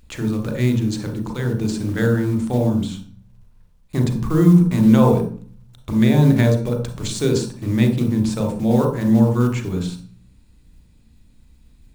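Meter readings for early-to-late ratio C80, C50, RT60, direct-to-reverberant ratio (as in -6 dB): 11.0 dB, 6.0 dB, 0.40 s, 2.0 dB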